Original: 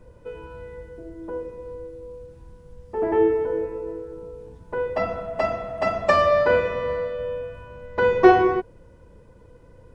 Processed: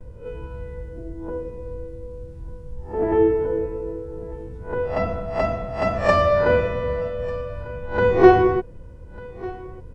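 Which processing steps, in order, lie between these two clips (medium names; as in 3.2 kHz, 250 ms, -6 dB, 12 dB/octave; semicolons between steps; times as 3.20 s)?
reverse spectral sustain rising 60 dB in 0.32 s; gate with hold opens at -45 dBFS; bass shelf 230 Hz +11.5 dB; on a send: delay 1196 ms -20.5 dB; on the sum: trim -1.5 dB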